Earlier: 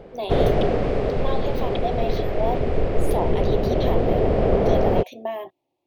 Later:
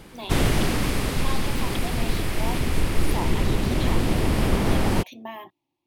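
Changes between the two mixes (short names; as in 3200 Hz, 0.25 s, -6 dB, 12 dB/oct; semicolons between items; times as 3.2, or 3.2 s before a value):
background: remove tape spacing loss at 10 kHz 31 dB; master: add band shelf 540 Hz -12.5 dB 1.1 oct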